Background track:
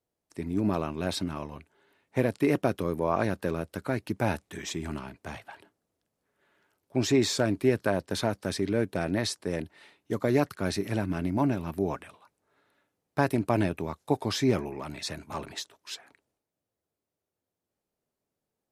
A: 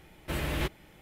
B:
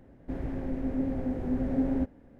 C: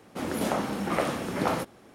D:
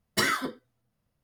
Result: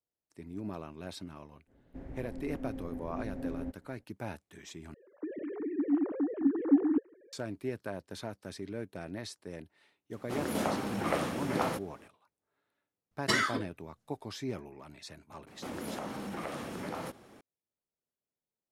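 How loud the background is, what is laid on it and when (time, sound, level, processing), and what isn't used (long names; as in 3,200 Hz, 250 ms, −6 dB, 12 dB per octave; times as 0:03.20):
background track −12.5 dB
0:01.66: mix in B −10.5 dB, fades 0.05 s
0:04.94: overwrite with B + three sine waves on the formant tracks
0:10.14: mix in C −4 dB
0:13.11: mix in D −2.5 dB + low-pass filter 8,000 Hz
0:15.47: mix in C −2.5 dB + downward compressor 3 to 1, threshold −35 dBFS
not used: A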